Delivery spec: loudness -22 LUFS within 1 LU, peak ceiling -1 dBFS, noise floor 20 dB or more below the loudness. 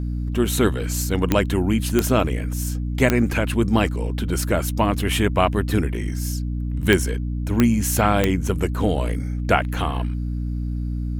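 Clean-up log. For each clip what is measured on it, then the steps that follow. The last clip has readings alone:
clicks found 6; hum 60 Hz; highest harmonic 300 Hz; hum level -23 dBFS; loudness -22.0 LUFS; peak level -1.5 dBFS; loudness target -22.0 LUFS
-> de-click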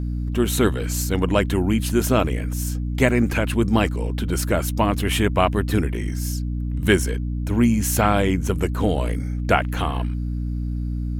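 clicks found 0; hum 60 Hz; highest harmonic 300 Hz; hum level -23 dBFS
-> hum notches 60/120/180/240/300 Hz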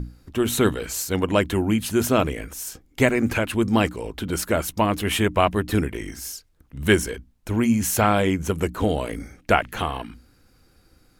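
hum not found; loudness -23.0 LUFS; peak level -2.5 dBFS; loudness target -22.0 LUFS
-> trim +1 dB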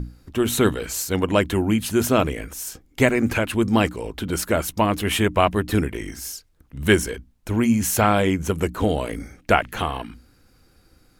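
loudness -22.0 LUFS; peak level -1.5 dBFS; noise floor -59 dBFS

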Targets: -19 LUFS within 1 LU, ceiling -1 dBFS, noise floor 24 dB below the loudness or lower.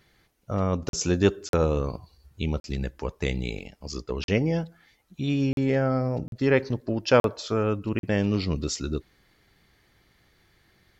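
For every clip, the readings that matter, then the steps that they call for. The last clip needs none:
dropouts 8; longest dropout 42 ms; loudness -26.5 LUFS; peak level -7.5 dBFS; loudness target -19.0 LUFS
-> interpolate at 0.89/1.49/2.60/4.24/5.53/6.28/7.20/7.99 s, 42 ms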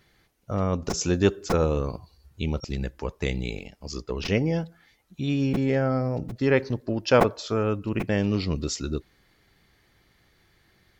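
dropouts 0; loudness -26.5 LUFS; peak level -5.5 dBFS; loudness target -19.0 LUFS
-> trim +7.5 dB; peak limiter -1 dBFS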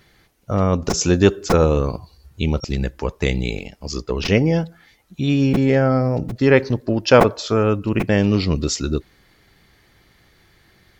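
loudness -19.0 LUFS; peak level -1.0 dBFS; noise floor -57 dBFS

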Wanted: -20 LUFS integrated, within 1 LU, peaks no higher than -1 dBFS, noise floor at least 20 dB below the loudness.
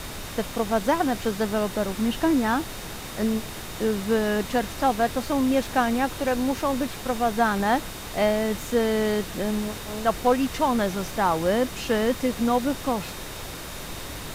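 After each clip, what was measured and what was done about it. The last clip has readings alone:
steady tone 3.7 kHz; tone level -48 dBFS; noise floor -36 dBFS; noise floor target -45 dBFS; loudness -25.0 LUFS; peak level -8.5 dBFS; loudness target -20.0 LUFS
-> band-stop 3.7 kHz, Q 30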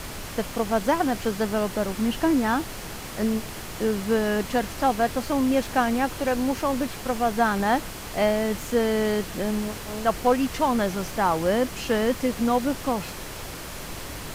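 steady tone not found; noise floor -37 dBFS; noise floor target -45 dBFS
-> noise print and reduce 8 dB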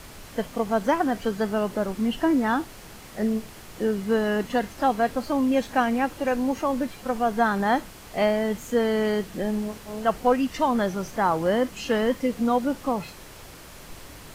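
noise floor -44 dBFS; noise floor target -45 dBFS
-> noise print and reduce 6 dB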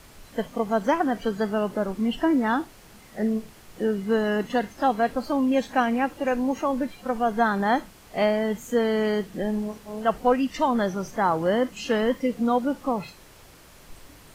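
noise floor -50 dBFS; loudness -25.0 LUFS; peak level -9.0 dBFS; loudness target -20.0 LUFS
-> trim +5 dB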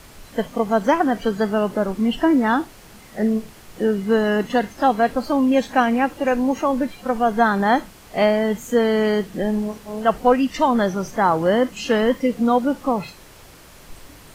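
loudness -20.0 LUFS; peak level -4.0 dBFS; noise floor -45 dBFS

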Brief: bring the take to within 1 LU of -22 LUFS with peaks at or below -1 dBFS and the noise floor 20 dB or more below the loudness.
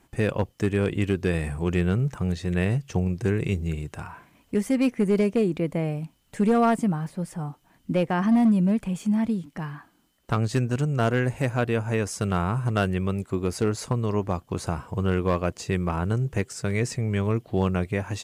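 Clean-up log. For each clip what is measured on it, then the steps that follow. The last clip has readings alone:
clipped samples 0.5%; clipping level -14.5 dBFS; loudness -25.5 LUFS; peak level -14.5 dBFS; loudness target -22.0 LUFS
-> clip repair -14.5 dBFS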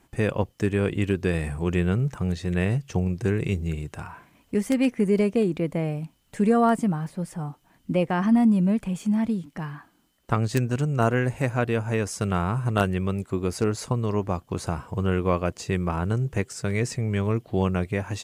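clipped samples 0.0%; loudness -25.5 LUFS; peak level -6.5 dBFS; loudness target -22.0 LUFS
-> trim +3.5 dB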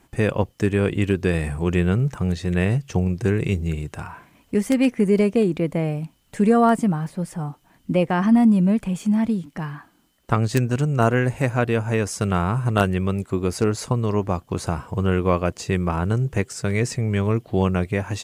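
loudness -22.0 LUFS; peak level -3.0 dBFS; noise floor -60 dBFS

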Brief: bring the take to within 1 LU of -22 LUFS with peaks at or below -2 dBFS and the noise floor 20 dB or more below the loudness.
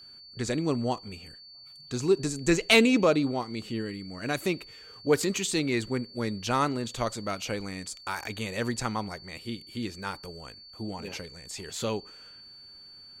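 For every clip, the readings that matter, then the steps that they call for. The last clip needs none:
steady tone 4.5 kHz; tone level -47 dBFS; loudness -29.0 LUFS; peak level -10.0 dBFS; loudness target -22.0 LUFS
-> band-stop 4.5 kHz, Q 30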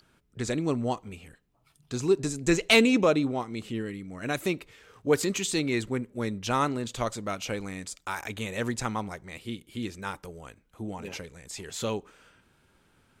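steady tone not found; loudness -29.0 LUFS; peak level -9.5 dBFS; loudness target -22.0 LUFS
-> trim +7 dB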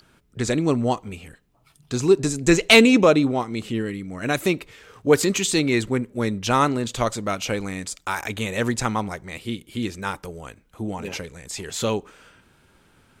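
loudness -22.0 LUFS; peak level -2.5 dBFS; noise floor -60 dBFS

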